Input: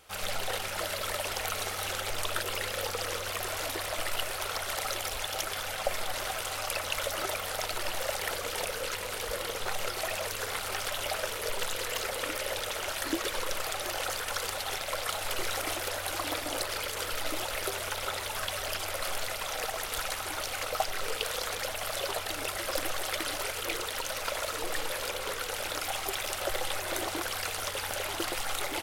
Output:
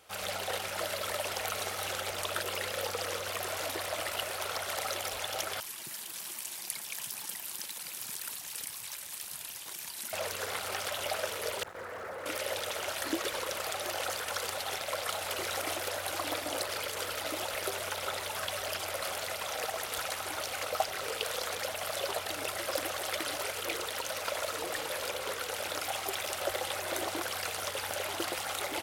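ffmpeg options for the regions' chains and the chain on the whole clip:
-filter_complex "[0:a]asettb=1/sr,asplit=3[s0][s1][s2];[s0]atrim=end=5.604[s3];[s1]atrim=start=5.6:end=10.13,asetpts=PTS-STARTPTS,afade=t=in:d=0.004:c=qsin,afade=t=out:st=4.526:d=0.004:c=qsin,aderivative,afreqshift=-420[s4];[s2]atrim=start=10.126[s5];[s3][s4]acrossfade=d=0.004:c1=hsin:c2=qsin[s6];[s6][s5]acrossfade=d=0.004:c1=qsin:c2=hsin,asettb=1/sr,asplit=3[s7][s8][s9];[s7]atrim=end=11.634[s10];[s8]atrim=start=11.63:end=12.26,asetpts=PTS-STARTPTS,afade=t=in:d=0.004:c=qsin,afade=t=out:st=0.626:d=0.004:c=qsin,acrossover=split=2700[s11][s12];[s12]acompressor=threshold=0.00794:ratio=4:attack=1:release=60[s13];[s11][s13]amix=inputs=2:normalize=0,asoftclip=type=hard:threshold=0.0141,highshelf=f=2200:t=q:w=1.5:g=-8.5[s14];[s9]atrim=start=12.256[s15];[s10][s14]acrossfade=d=0.004:c1=hsin:c2=qsin[s16];[s16][s15]acrossfade=d=0.004:c1=qsin:c2=hsin,highpass=86,equalizer=f=620:w=2:g=2.5,volume=0.794"

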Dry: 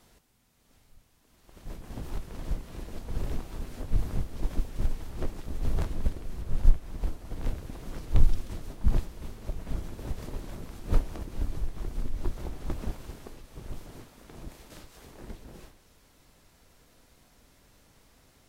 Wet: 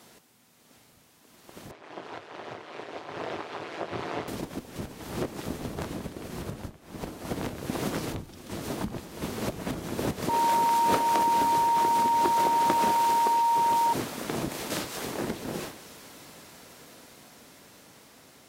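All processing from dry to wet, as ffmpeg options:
-filter_complex "[0:a]asettb=1/sr,asplit=3[s0][s1][s2];[s0]atrim=end=1.714[s3];[s1]atrim=start=1.71:end=4.28,asetpts=PTS-STARTPTS,afade=t=in:d=0.004:c=qsin,afade=t=out:st=2.566:d=0.004:c=qsin,aecho=1:1:3.4:0.61,atrim=end_sample=113337,aeval=exprs='val(0)*sin(2*PI*80*n/s)':c=same,highpass=530,lowpass=3100[s4];[s2]atrim=start=4.276[s5];[s3][s4]acrossfade=d=0.004:c1=hsin:c2=qsin[s6];[s6][s5]acrossfade=d=0.004:c1=qsin:c2=hsin,asettb=1/sr,asplit=3[s7][s8][s9];[s7]atrim=end=10.294[s10];[s8]atrim=start=10.29:end=13.93,asetpts=PTS-STARTPTS,afade=t=in:d=0.004:c=qsin,afade=t=out:st=3.636:d=0.004:c=qsin,aeval=exprs='val(0)+0.0141*sin(2*PI*930*n/s)':c=same,highpass=f=620:p=1[s11];[s9]atrim=start=13.926[s12];[s10][s11]acrossfade=d=0.004:c1=hsin:c2=qsin[s13];[s13][s12]acrossfade=d=0.004:c1=qsin:c2=hsin,acompressor=threshold=0.0112:ratio=6,highpass=170,dynaudnorm=f=820:g=9:m=3.55,volume=2.66"

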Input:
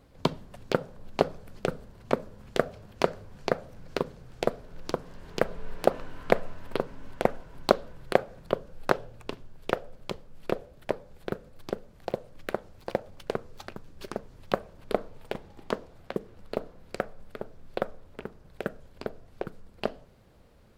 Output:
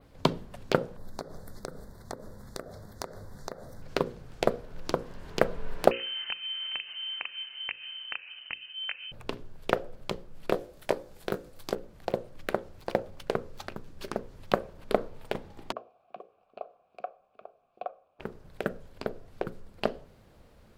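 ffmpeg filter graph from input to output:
-filter_complex "[0:a]asettb=1/sr,asplit=3[s0][s1][s2];[s0]atrim=end=0.974[s3];[s1]atrim=start=0.97:end=3.82,asetpts=PTS-STARTPTS,afade=t=in:d=0.004:c=qsin,afade=t=out:st=2.846:d=0.004:c=qsin,asuperstop=centerf=2700:order=8:qfactor=1.8,highshelf=f=7300:g=9,acompressor=threshold=0.0178:ratio=8:attack=3.2:release=140:knee=1:detection=peak[s4];[s2]atrim=start=3.816[s5];[s3][s4]acrossfade=d=0.004:c1=hsin:c2=qsin[s6];[s6][s5]acrossfade=d=0.004:c1=qsin:c2=hsin,asettb=1/sr,asplit=3[s7][s8][s9];[s7]atrim=end=5.914[s10];[s8]atrim=start=5.91:end=9.12,asetpts=PTS-STARTPTS,afade=t=in:d=0.004:c=qsin,afade=t=out:st=3.206:d=0.004:c=qsin,acompressor=threshold=0.0224:ratio=8:attack=3.2:release=140:knee=1:detection=peak,lowpass=f=2600:t=q:w=0.5098,lowpass=f=2600:t=q:w=0.6013,lowpass=f=2600:t=q:w=0.9,lowpass=f=2600:t=q:w=2.563,afreqshift=-3100[s11];[s9]atrim=start=9.116[s12];[s10][s11]acrossfade=d=0.004:c1=hsin:c2=qsin[s13];[s13][s12]acrossfade=d=0.004:c1=qsin:c2=hsin,asettb=1/sr,asplit=3[s14][s15][s16];[s14]atrim=end=10.514[s17];[s15]atrim=start=10.51:end=11.75,asetpts=PTS-STARTPTS,afade=t=in:d=0.004:c=qsin,afade=t=out:st=1.236:d=0.004:c=qsin,bass=f=250:g=-4,treble=f=4000:g=7,asplit=2[s18][s19];[s19]adelay=20,volume=0.355[s20];[s18][s20]amix=inputs=2:normalize=0,atrim=end_sample=54684[s21];[s16]atrim=start=11.746[s22];[s17][s21]acrossfade=d=0.004:c1=hsin:c2=qsin[s23];[s23][s22]acrossfade=d=0.004:c1=qsin:c2=hsin,asettb=1/sr,asplit=3[s24][s25][s26];[s24]atrim=end=15.724[s27];[s25]atrim=start=15.72:end=18.2,asetpts=PTS-STARTPTS,afade=t=in:d=0.004:c=qsin,afade=t=out:st=2.476:d=0.004:c=qsin,asplit=3[s28][s29][s30];[s28]bandpass=f=730:t=q:w=8,volume=1[s31];[s29]bandpass=f=1090:t=q:w=8,volume=0.501[s32];[s30]bandpass=f=2440:t=q:w=8,volume=0.355[s33];[s31][s32][s33]amix=inputs=3:normalize=0,acrossover=split=310[s34][s35];[s35]adelay=40[s36];[s34][s36]amix=inputs=2:normalize=0,atrim=end_sample=109368[s37];[s26]atrim=start=18.196[s38];[s27][s37]acrossfade=d=0.004:c1=hsin:c2=qsin[s39];[s39][s38]acrossfade=d=0.004:c1=qsin:c2=hsin,bandreject=f=60:t=h:w=6,bandreject=f=120:t=h:w=6,bandreject=f=180:t=h:w=6,bandreject=f=240:t=h:w=6,bandreject=f=300:t=h:w=6,bandreject=f=360:t=h:w=6,bandreject=f=420:t=h:w=6,bandreject=f=480:t=h:w=6,bandreject=f=540:t=h:w=6,adynamicequalizer=threshold=0.00112:dfrequency=7200:dqfactor=0.98:tfrequency=7200:tqfactor=0.98:attack=5:release=100:ratio=0.375:range=2.5:mode=cutabove:tftype=bell,volume=1.26"

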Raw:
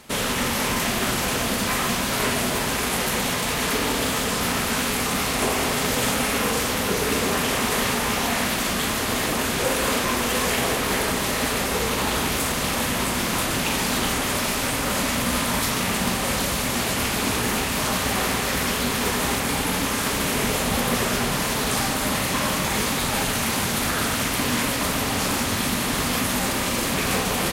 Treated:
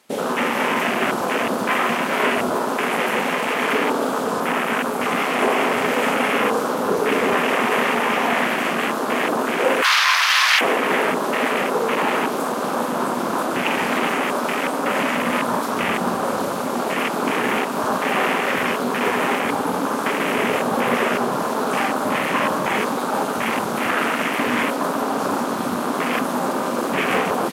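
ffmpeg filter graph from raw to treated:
-filter_complex "[0:a]asettb=1/sr,asplit=3[s0][s1][s2];[s0]atrim=end=4.404[s3];[s1]atrim=start=4.4:end=5.01,asetpts=PTS-STARTPTS,afade=t=in:d=0.004:c=qsin,afade=t=out:st=0.606:d=0.004:c=qsin,equalizer=f=4400:w=1:g=-3.5,bandreject=f=50:t=h:w=6,bandreject=f=100:t=h:w=6,bandreject=f=150:t=h:w=6,bandreject=f=200:t=h:w=6,bandreject=f=250:t=h:w=6,bandreject=f=300:t=h:w=6,bandreject=f=350:t=h:w=6,bandreject=f=400:t=h:w=6[s4];[s2]atrim=start=5.006[s5];[s3][s4]acrossfade=d=0.004:c1=hsin:c2=qsin[s6];[s6][s5]acrossfade=d=0.004:c1=qsin:c2=hsin,asettb=1/sr,asplit=3[s7][s8][s9];[s7]atrim=end=9.824[s10];[s8]atrim=start=9.82:end=10.61,asetpts=PTS-STARTPTS,afade=t=in:d=0.004:c=qsin,afade=t=out:st=0.786:d=0.004:c=qsin,highpass=f=1100:w=0.5412,highpass=f=1100:w=1.3066,acontrast=29[s11];[s9]atrim=start=10.606[s12];[s10][s11]acrossfade=d=0.004:c1=hsin:c2=qsin[s13];[s13][s12]acrossfade=d=0.004:c1=qsin:c2=hsin,acontrast=84,highpass=270,afwtdn=0.126"

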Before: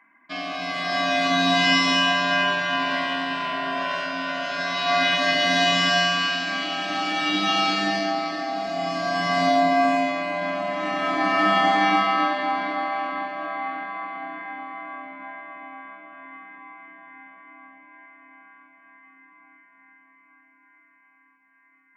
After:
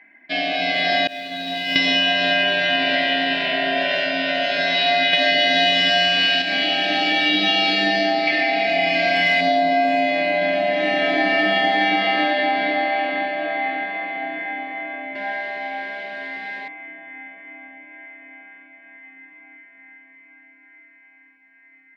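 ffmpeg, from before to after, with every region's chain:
-filter_complex "[0:a]asettb=1/sr,asplit=3[s0][s1][s2];[s0]atrim=end=1.074[s3];[s1]atrim=start=1.07:end=1.76,asetpts=PTS-STARTPTS,afade=t=in:d=0.004:c=qsin,afade=t=out:st=0.686:d=0.004:c=qsin,aeval=exprs='val(0)+0.5*0.0944*sgn(val(0))':c=same,agate=range=0.0224:threshold=0.501:ratio=3:release=100:detection=peak[s4];[s2]atrim=start=1.756[s5];[s3][s4]acrossfade=d=0.004:c1=hsin:c2=qsin[s6];[s6][s5]acrossfade=d=0.004:c1=qsin:c2=hsin,asettb=1/sr,asplit=3[s7][s8][s9];[s7]atrim=end=5.134[s10];[s8]atrim=start=5.13:end=6.42,asetpts=PTS-STARTPTS,afade=t=in:d=0.004:c=qsin,afade=t=out:st=1.286:d=0.004:c=qsin,bandreject=f=60:t=h:w=6,bandreject=f=120:t=h:w=6,bandreject=f=180:t=h:w=6,bandreject=f=240:t=h:w=6,bandreject=f=300:t=h:w=6,bandreject=f=360:t=h:w=6,bandreject=f=420:t=h:w=6,acontrast=65[s11];[s9]atrim=start=6.416[s12];[s10][s11]acrossfade=d=0.004:c1=hsin:c2=qsin[s13];[s13][s12]acrossfade=d=0.004:c1=qsin:c2=hsin,asettb=1/sr,asplit=3[s14][s15][s16];[s14]atrim=end=8.274[s17];[s15]atrim=start=8.27:end=9.41,asetpts=PTS-STARTPTS,afade=t=in:d=0.004:c=qsin,afade=t=out:st=1.136:d=0.004:c=qsin,equalizer=f=2300:w=2.4:g=14,asoftclip=type=hard:threshold=0.168[s18];[s16]atrim=start=9.406[s19];[s17][s18]acrossfade=d=0.004:c1=hsin:c2=qsin[s20];[s20][s19]acrossfade=d=0.004:c1=qsin:c2=hsin,asettb=1/sr,asplit=3[s21][s22][s23];[s21]atrim=end=15.154[s24];[s22]atrim=start=15.15:end=16.68,asetpts=PTS-STARTPTS,afade=t=in:d=0.004:c=qsin,afade=t=out:st=1.526:d=0.004:c=qsin,aeval=exprs='val(0)+0.5*0.0075*sgn(val(0))':c=same,highpass=160,lowpass=3700,aecho=1:1:5:0.9,atrim=end_sample=67473[s25];[s23]atrim=start=16.676[s26];[s24][s25]acrossfade=d=0.004:c1=hsin:c2=qsin[s27];[s27][s26]acrossfade=d=0.004:c1=qsin:c2=hsin,firequalizer=gain_entry='entry(160,0);entry(470,8);entry(760,5);entry(1100,-18);entry(1700,7);entry(3900,8);entry(6400,-7)':delay=0.05:min_phase=1,acompressor=threshold=0.126:ratio=6,volume=1.41"

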